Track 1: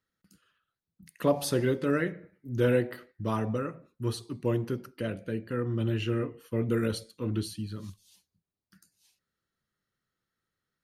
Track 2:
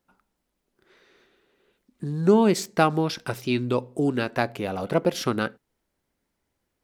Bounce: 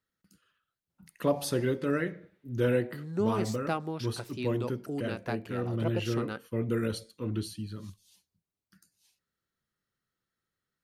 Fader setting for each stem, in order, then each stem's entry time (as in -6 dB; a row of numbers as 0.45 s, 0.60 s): -2.0 dB, -12.0 dB; 0.00 s, 0.90 s